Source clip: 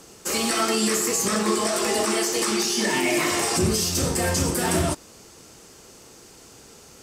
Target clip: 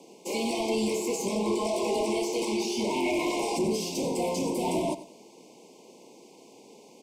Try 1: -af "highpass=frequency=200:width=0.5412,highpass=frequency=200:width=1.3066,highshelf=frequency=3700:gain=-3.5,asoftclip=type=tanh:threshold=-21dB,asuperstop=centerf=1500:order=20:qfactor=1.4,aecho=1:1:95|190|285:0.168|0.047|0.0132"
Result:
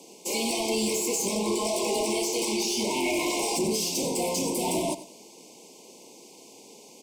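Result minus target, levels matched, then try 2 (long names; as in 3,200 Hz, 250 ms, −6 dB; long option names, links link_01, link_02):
8,000 Hz band +6.5 dB
-af "highpass=frequency=200:width=0.5412,highpass=frequency=200:width=1.3066,highshelf=frequency=3700:gain=-15,asoftclip=type=tanh:threshold=-21dB,asuperstop=centerf=1500:order=20:qfactor=1.4,aecho=1:1:95|190|285:0.168|0.047|0.0132"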